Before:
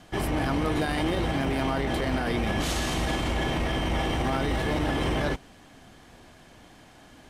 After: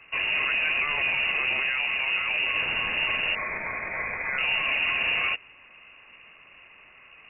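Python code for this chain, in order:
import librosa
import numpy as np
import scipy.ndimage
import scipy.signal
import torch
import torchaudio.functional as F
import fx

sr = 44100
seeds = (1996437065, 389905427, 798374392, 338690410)

y = fx.air_absorb(x, sr, metres=280.0, at=(1.6, 2.55))
y = fx.highpass(y, sr, hz=390.0, slope=24, at=(3.35, 4.38))
y = fx.freq_invert(y, sr, carrier_hz=2800)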